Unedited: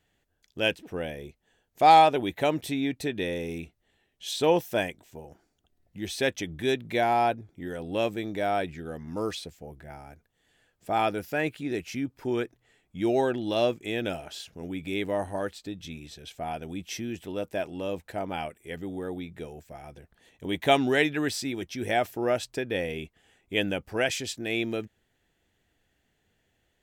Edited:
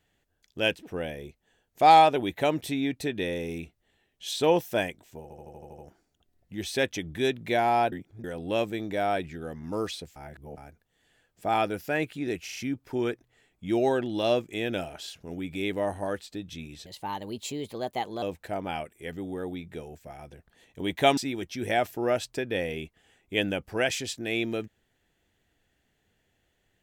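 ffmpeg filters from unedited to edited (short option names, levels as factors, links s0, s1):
-filter_complex "[0:a]asplit=18[s0][s1][s2][s3][s4][s5][s6][s7][s8][s9][s10][s11][s12][s13][s14][s15][s16][s17];[s0]atrim=end=5.302[s18];[s1]atrim=start=5.218:end=5.302[s19];[s2]atrim=start=5.218:end=5.302[s20];[s3]atrim=start=5.218:end=5.302[s21];[s4]atrim=start=5.218:end=5.302[s22];[s5]atrim=start=5.218:end=5.302[s23];[s6]atrim=start=5.218:end=5.302[s24];[s7]atrim=start=5.218:end=7.362[s25];[s8]atrim=start=7.358:end=7.682,asetpts=PTS-STARTPTS,areverse[s26];[s9]atrim=start=7.678:end=9.602[s27];[s10]atrim=start=9.598:end=10.012,asetpts=PTS-STARTPTS,areverse[s28];[s11]atrim=start=10.008:end=11.922[s29];[s12]atrim=start=11.878:end=11.922[s30];[s13]atrim=start=11.878:end=11.922[s31];[s14]atrim=start=11.878:end=16.184[s32];[s15]atrim=start=16.18:end=17.87,asetpts=PTS-STARTPTS,asetrate=54684,aresample=44100,atrim=end_sample=60104,asetpts=PTS-STARTPTS[s33];[s16]atrim=start=17.866:end=20.822[s34];[s17]atrim=start=21.368[s35];[s18][s19]acrossfade=d=0.004:c1=hsin:c2=hsin[s36];[s36][s20]acrossfade=d=0.004:c1=hsin:c2=hsin[s37];[s37][s21]acrossfade=d=0.004:c1=hsin:c2=hsin[s38];[s38][s22]acrossfade=d=0.004:c1=hsin:c2=hsin[s39];[s39][s23]acrossfade=d=0.004:c1=hsin:c2=hsin[s40];[s40][s24]acrossfade=d=0.004:c1=hsin:c2=hsin[s41];[s41][s25]acrossfade=d=0.004:c1=hsin:c2=hsin[s42];[s42][s26]acrossfade=d=0.004:c1=hsin:c2=hsin[s43];[s43][s27]acrossfade=d=0.004:c1=hsin:c2=hsin[s44];[s44][s28]acrossfade=d=0.004:c1=hsin:c2=hsin[s45];[s45][s29]acrossfade=d=0.004:c1=hsin:c2=hsin[s46];[s46][s30]acrossfade=d=0.004:c1=hsin:c2=hsin[s47];[s47][s31]acrossfade=d=0.004:c1=hsin:c2=hsin[s48];[s48][s32]acrossfade=d=0.004:c1=hsin:c2=hsin[s49];[s49][s33]acrossfade=d=0.004:c1=hsin:c2=hsin[s50];[s50][s34]acrossfade=d=0.004:c1=hsin:c2=hsin[s51];[s51][s35]acrossfade=d=0.004:c1=hsin:c2=hsin"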